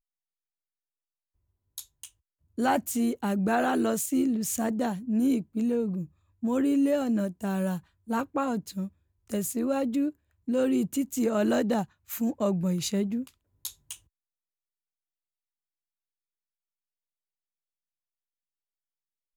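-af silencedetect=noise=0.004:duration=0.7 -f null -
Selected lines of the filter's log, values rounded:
silence_start: 0.00
silence_end: 1.78 | silence_duration: 1.78
silence_start: 13.97
silence_end: 19.36 | silence_duration: 5.39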